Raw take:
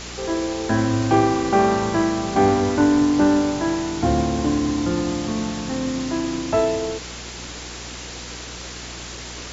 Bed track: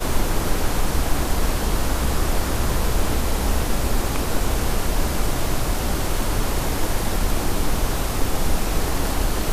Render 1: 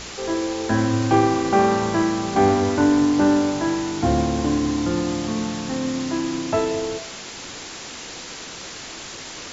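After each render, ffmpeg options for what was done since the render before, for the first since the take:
ffmpeg -i in.wav -af "bandreject=frequency=60:width_type=h:width=4,bandreject=frequency=120:width_type=h:width=4,bandreject=frequency=180:width_type=h:width=4,bandreject=frequency=240:width_type=h:width=4,bandreject=frequency=300:width_type=h:width=4,bandreject=frequency=360:width_type=h:width=4,bandreject=frequency=420:width_type=h:width=4,bandreject=frequency=480:width_type=h:width=4,bandreject=frequency=540:width_type=h:width=4,bandreject=frequency=600:width_type=h:width=4,bandreject=frequency=660:width_type=h:width=4" out.wav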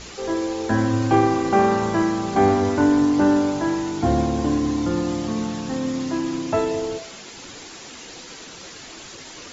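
ffmpeg -i in.wav -af "afftdn=noise_reduction=7:noise_floor=-36" out.wav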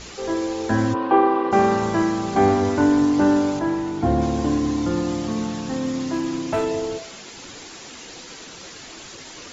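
ffmpeg -i in.wav -filter_complex "[0:a]asplit=3[link_01][link_02][link_03];[link_01]afade=type=out:start_time=0.93:duration=0.02[link_04];[link_02]highpass=frequency=230:width=0.5412,highpass=frequency=230:width=1.3066,equalizer=frequency=280:width_type=q:width=4:gain=-5,equalizer=frequency=450:width_type=q:width=4:gain=5,equalizer=frequency=1000:width_type=q:width=4:gain=10,equalizer=frequency=2200:width_type=q:width=4:gain=-6,lowpass=frequency=3100:width=0.5412,lowpass=frequency=3100:width=1.3066,afade=type=in:start_time=0.93:duration=0.02,afade=type=out:start_time=1.51:duration=0.02[link_05];[link_03]afade=type=in:start_time=1.51:duration=0.02[link_06];[link_04][link_05][link_06]amix=inputs=3:normalize=0,asettb=1/sr,asplit=3[link_07][link_08][link_09];[link_07]atrim=end=3.594[link_10];[link_08]atrim=start=3.59:end=4.22,asetpts=PTS-STARTPTS,afade=type=in:duration=0.004:curve=qsin,afade=type=out:start_time=0.626:duration=0.004:curve=qsin,highshelf=frequency=3300:gain=-10[link_11];[link_09]atrim=start=4.216[link_12];[link_10][link_11]acrossfade=duration=0.004:curve1=hsin:curve2=qsin[link_13];[link_13][link_12]acrossfade=duration=0.004:curve1=qsin:curve2=hsin,asettb=1/sr,asplit=3[link_14][link_15][link_16];[link_14]atrim=end=5.154[link_17];[link_15]atrim=start=5.15:end=6.64,asetpts=PTS-STARTPTS,afade=type=in:duration=0.004:curve=qsin,afade=type=out:start_time=1.486:duration=0.004:curve=qsin,volume=17dB,asoftclip=hard,volume=-17dB[link_18];[link_16]atrim=start=6.636[link_19];[link_17][link_18]acrossfade=duration=0.004:curve1=hsin:curve2=qsin[link_20];[link_20][link_19]acrossfade=duration=0.004:curve1=qsin:curve2=hsin" out.wav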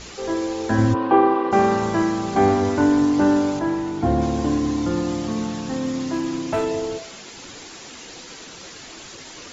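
ffmpeg -i in.wav -filter_complex "[0:a]asettb=1/sr,asplit=3[link_01][link_02][link_03];[link_01]atrim=end=0.784[link_04];[link_02]atrim=start=0.78:end=1.34,asetpts=PTS-STARTPTS,afade=type=in:duration=0.004:curve=qsin,afade=type=out:start_time=0.556:duration=0.004:curve=qsin,lowshelf=frequency=140:gain=10.5[link_05];[link_03]atrim=start=1.336[link_06];[link_04][link_05]acrossfade=duration=0.004:curve1=hsin:curve2=qsin[link_07];[link_07][link_06]acrossfade=duration=0.004:curve1=qsin:curve2=hsin" out.wav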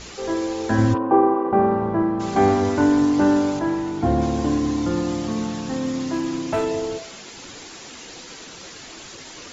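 ffmpeg -i in.wav -filter_complex "[0:a]asplit=3[link_01][link_02][link_03];[link_01]afade=type=out:start_time=0.97:duration=0.02[link_04];[link_02]lowpass=1100,afade=type=in:start_time=0.97:duration=0.02,afade=type=out:start_time=2.19:duration=0.02[link_05];[link_03]afade=type=in:start_time=2.19:duration=0.02[link_06];[link_04][link_05][link_06]amix=inputs=3:normalize=0" out.wav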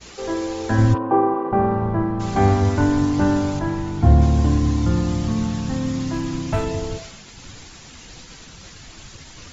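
ffmpeg -i in.wav -af "agate=range=-33dB:threshold=-35dB:ratio=3:detection=peak,asubboost=boost=7.5:cutoff=130" out.wav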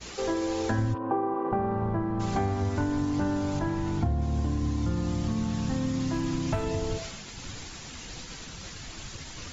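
ffmpeg -i in.wav -af "acompressor=threshold=-25dB:ratio=6" out.wav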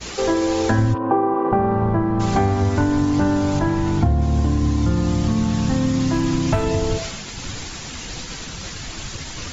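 ffmpeg -i in.wav -af "volume=9.5dB" out.wav

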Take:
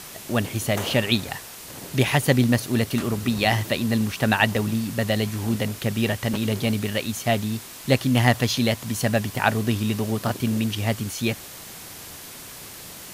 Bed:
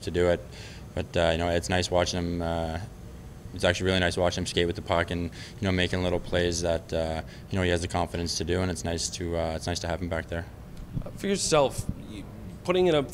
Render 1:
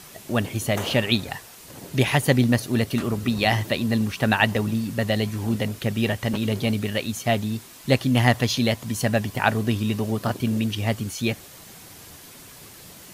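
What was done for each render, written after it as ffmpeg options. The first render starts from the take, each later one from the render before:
ffmpeg -i in.wav -af "afftdn=noise_reduction=6:noise_floor=-40" out.wav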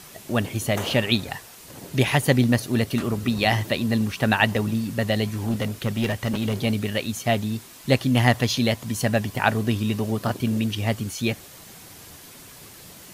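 ffmpeg -i in.wav -filter_complex "[0:a]asettb=1/sr,asplit=3[link_01][link_02][link_03];[link_01]atrim=end=5.314[link_04];[link_02]atrim=start=5.31:end=6.64,asetpts=PTS-STARTPTS,afade=type=in:duration=0.004:curve=qsin,afade=type=out:start_time=1.326:duration=0.004:curve=qsin,aeval=exprs='clip(val(0),-1,0.1)':channel_layout=same[link_05];[link_03]atrim=start=6.636[link_06];[link_04][link_05]acrossfade=duration=0.004:curve1=hsin:curve2=qsin[link_07];[link_07][link_06]acrossfade=duration=0.004:curve1=qsin:curve2=hsin" out.wav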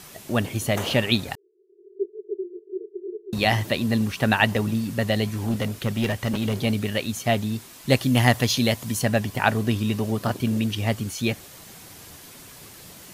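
ffmpeg -i in.wav -filter_complex "[0:a]asettb=1/sr,asplit=3[link_01][link_02][link_03];[link_01]atrim=end=1.354[link_04];[link_02]atrim=start=1.35:end=3.33,asetpts=PTS-STARTPTS,afade=type=in:duration=0.004:curve=qsin,afade=type=out:start_time=1.976:duration=0.004:curve=qsin,asuperpass=centerf=390:order=12:qfactor=4.1[link_05];[link_03]atrim=start=3.326[link_06];[link_04][link_05]acrossfade=duration=0.004:curve1=hsin:curve2=qsin[link_07];[link_07][link_06]acrossfade=duration=0.004:curve1=qsin:curve2=hsin,asettb=1/sr,asplit=3[link_08][link_09][link_10];[link_08]atrim=end=7.904[link_11];[link_09]atrim=start=7.9:end=8.99,asetpts=PTS-STARTPTS,afade=type=in:duration=0.004:curve=qsin,afade=type=out:start_time=1.086:duration=0.004:curve=qsin,highshelf=frequency=5900:gain=5.5[link_12];[link_10]atrim=start=8.986[link_13];[link_11][link_12]acrossfade=duration=0.004:curve1=hsin:curve2=qsin[link_14];[link_14][link_13]acrossfade=duration=0.004:curve1=qsin:curve2=hsin" out.wav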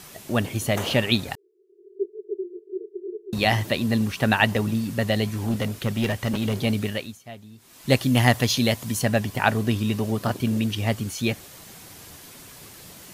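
ffmpeg -i in.wav -filter_complex "[0:a]asplit=3[link_01][link_02][link_03];[link_01]atrim=end=7.18,asetpts=PTS-STARTPTS,afade=type=out:start_time=6.85:duration=0.33:silence=0.11885[link_04];[link_02]atrim=start=7.18:end=7.57,asetpts=PTS-STARTPTS,volume=-18.5dB[link_05];[link_03]atrim=start=7.57,asetpts=PTS-STARTPTS,afade=type=in:duration=0.33:silence=0.11885[link_06];[link_04][link_05][link_06]concat=n=3:v=0:a=1" out.wav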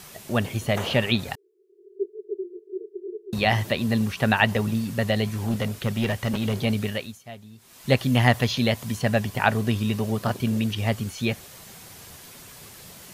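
ffmpeg -i in.wav -filter_complex "[0:a]acrossover=split=4100[link_01][link_02];[link_02]acompressor=threshold=-39dB:ratio=4:attack=1:release=60[link_03];[link_01][link_03]amix=inputs=2:normalize=0,equalizer=frequency=300:width_type=o:width=0.29:gain=-7" out.wav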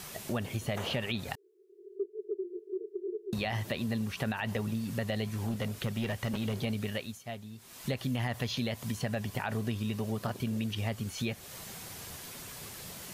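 ffmpeg -i in.wav -af "alimiter=limit=-13dB:level=0:latency=1:release=44,acompressor=threshold=-33dB:ratio=3" out.wav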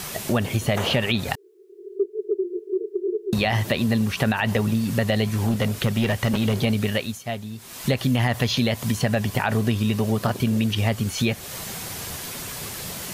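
ffmpeg -i in.wav -af "volume=11.5dB" out.wav

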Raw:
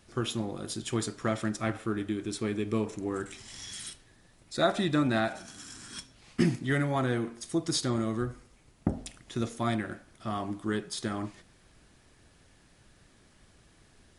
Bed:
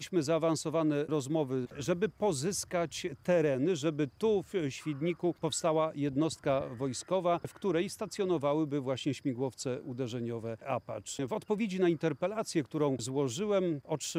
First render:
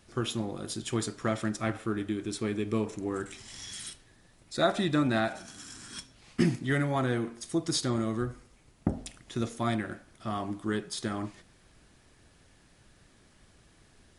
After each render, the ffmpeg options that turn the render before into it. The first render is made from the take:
ffmpeg -i in.wav -af anull out.wav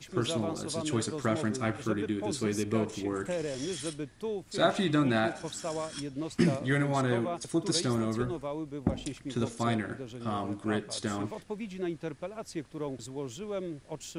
ffmpeg -i in.wav -i bed.wav -filter_complex "[1:a]volume=-6dB[link_01];[0:a][link_01]amix=inputs=2:normalize=0" out.wav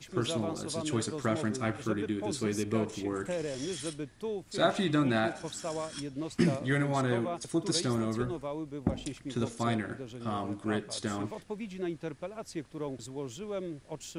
ffmpeg -i in.wav -af "volume=-1dB" out.wav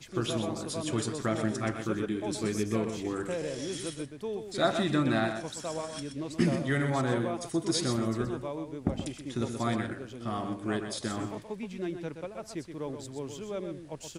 ffmpeg -i in.wav -af "aecho=1:1:125:0.398" out.wav

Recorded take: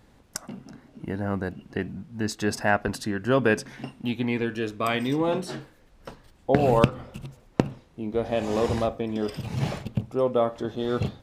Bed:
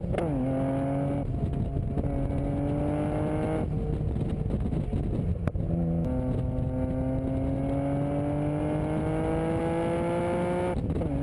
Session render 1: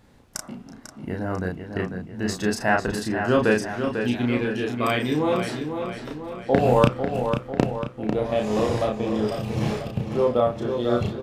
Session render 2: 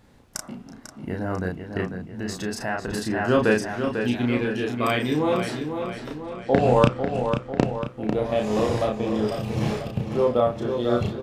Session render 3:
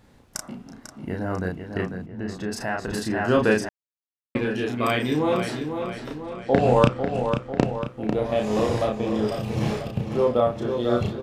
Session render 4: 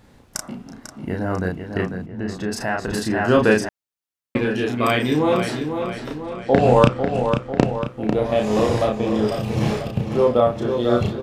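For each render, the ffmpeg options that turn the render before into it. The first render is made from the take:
ffmpeg -i in.wav -filter_complex "[0:a]asplit=2[link_01][link_02];[link_02]adelay=33,volume=-3dB[link_03];[link_01][link_03]amix=inputs=2:normalize=0,asplit=2[link_04][link_05];[link_05]adelay=496,lowpass=frequency=4800:poles=1,volume=-7dB,asplit=2[link_06][link_07];[link_07]adelay=496,lowpass=frequency=4800:poles=1,volume=0.55,asplit=2[link_08][link_09];[link_09]adelay=496,lowpass=frequency=4800:poles=1,volume=0.55,asplit=2[link_10][link_11];[link_11]adelay=496,lowpass=frequency=4800:poles=1,volume=0.55,asplit=2[link_12][link_13];[link_13]adelay=496,lowpass=frequency=4800:poles=1,volume=0.55,asplit=2[link_14][link_15];[link_15]adelay=496,lowpass=frequency=4800:poles=1,volume=0.55,asplit=2[link_16][link_17];[link_17]adelay=496,lowpass=frequency=4800:poles=1,volume=0.55[link_18];[link_04][link_06][link_08][link_10][link_12][link_14][link_16][link_18]amix=inputs=8:normalize=0" out.wav
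ffmpeg -i in.wav -filter_complex "[0:a]asettb=1/sr,asplit=3[link_01][link_02][link_03];[link_01]atrim=end=1.914[link_04];[link_02]atrim=start=1.91:end=2.91,asetpts=PTS-STARTPTS,afade=type=in:duration=0.004:curve=qsin,afade=type=out:start_time=0.996:duration=0.004:curve=qsin,acompressor=threshold=-28dB:ratio=2:attack=3.2:release=140:knee=1:detection=peak[link_05];[link_03]atrim=start=2.906[link_06];[link_04][link_05]acrossfade=duration=0.004:curve1=hsin:curve2=qsin[link_07];[link_07][link_06]acrossfade=duration=0.004:curve1=qsin:curve2=hsin,asettb=1/sr,asplit=3[link_08][link_09][link_10];[link_08]atrim=end=6.244[link_11];[link_09]atrim=start=6.24:end=7.84,asetpts=PTS-STARTPTS,afade=type=in:duration=0.004:curve=qsin,afade=type=out:start_time=1.596:duration=0.004:curve=qsin,lowpass=frequency=9000:width=0.5412,lowpass=frequency=9000:width=1.3066[link_12];[link_10]atrim=start=7.836[link_13];[link_11][link_12]acrossfade=duration=0.004:curve1=hsin:curve2=qsin[link_14];[link_14][link_13]acrossfade=duration=0.004:curve1=qsin:curve2=hsin" out.wav
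ffmpeg -i in.wav -filter_complex "[0:a]asettb=1/sr,asplit=3[link_01][link_02][link_03];[link_01]atrim=end=2.064[link_04];[link_02]atrim=start=2.06:end=2.52,asetpts=PTS-STARTPTS,afade=type=in:duration=0.004:curve=qsin,afade=type=out:start_time=0.456:duration=0.004:curve=qsin,lowpass=frequency=1800:poles=1[link_05];[link_03]atrim=start=2.516[link_06];[link_04][link_05]acrossfade=duration=0.004:curve1=hsin:curve2=qsin[link_07];[link_07][link_06]acrossfade=duration=0.004:curve1=qsin:curve2=hsin,asplit=3[link_08][link_09][link_10];[link_08]atrim=end=3.69,asetpts=PTS-STARTPTS,afade=type=out:start_time=3.686:duration=0.004:curve=hsin[link_11];[link_09]atrim=start=3.69:end=4.35,asetpts=PTS-STARTPTS,volume=0[link_12];[link_10]atrim=start=4.35,asetpts=PTS-STARTPTS,afade=type=in:duration=0.004:curve=hsin[link_13];[link_11][link_12][link_13]concat=n=3:v=0:a=1" out.wav
ffmpeg -i in.wav -af "volume=4dB,alimiter=limit=-1dB:level=0:latency=1" out.wav

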